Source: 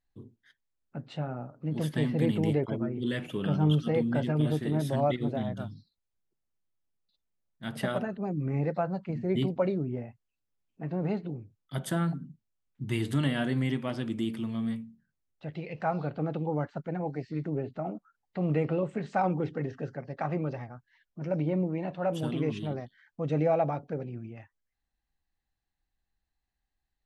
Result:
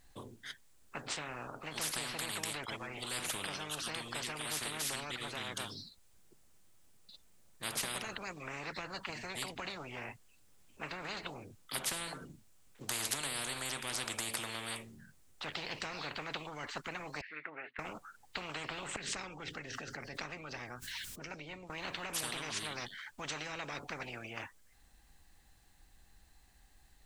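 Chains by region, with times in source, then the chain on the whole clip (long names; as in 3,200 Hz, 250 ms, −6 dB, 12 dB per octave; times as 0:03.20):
0:17.21–0:17.79: flat-topped band-pass 1,800 Hz, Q 1.8 + high-frequency loss of the air 160 metres
0:18.96–0:21.70: guitar amp tone stack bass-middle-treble 6-0-2 + envelope flattener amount 70%
whole clip: parametric band 8,300 Hz +6 dB 0.76 octaves; downward compressor 2.5 to 1, threshold −30 dBFS; every bin compressed towards the loudest bin 10 to 1; level +2.5 dB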